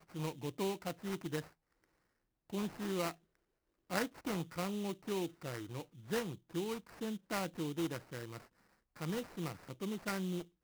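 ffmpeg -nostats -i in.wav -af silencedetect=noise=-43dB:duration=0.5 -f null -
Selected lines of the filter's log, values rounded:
silence_start: 1.41
silence_end: 2.53 | silence_duration: 1.12
silence_start: 3.11
silence_end: 3.91 | silence_duration: 0.79
silence_start: 8.38
silence_end: 9.01 | silence_duration: 0.63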